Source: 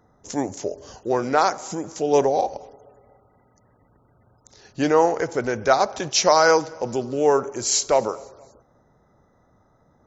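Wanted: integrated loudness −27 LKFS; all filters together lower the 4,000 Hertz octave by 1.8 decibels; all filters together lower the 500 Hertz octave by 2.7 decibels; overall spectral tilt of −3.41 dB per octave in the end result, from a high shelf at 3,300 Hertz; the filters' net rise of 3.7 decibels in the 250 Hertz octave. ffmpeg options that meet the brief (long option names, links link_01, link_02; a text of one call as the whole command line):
ffmpeg -i in.wav -af "equalizer=frequency=250:width_type=o:gain=6.5,equalizer=frequency=500:width_type=o:gain=-5,highshelf=frequency=3300:gain=3.5,equalizer=frequency=4000:width_type=o:gain=-6,volume=-4.5dB" out.wav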